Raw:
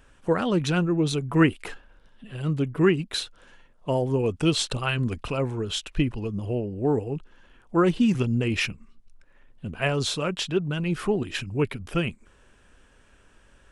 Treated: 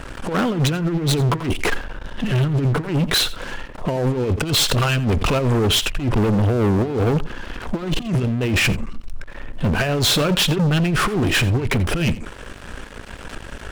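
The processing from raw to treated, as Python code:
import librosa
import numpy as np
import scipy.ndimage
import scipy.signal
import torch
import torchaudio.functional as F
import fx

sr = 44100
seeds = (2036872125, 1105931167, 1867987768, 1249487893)

y = np.minimum(x, 2.0 * 10.0 ** (-14.5 / 20.0) - x)
y = fx.high_shelf(y, sr, hz=2900.0, db=-6.5)
y = fx.over_compress(y, sr, threshold_db=-30.0, ratio=-0.5)
y = fx.leveller(y, sr, passes=5)
y = y + 10.0 ** (-18.0 / 20.0) * np.pad(y, (int(87 * sr / 1000.0), 0))[:len(y)]
y = fx.pre_swell(y, sr, db_per_s=120.0)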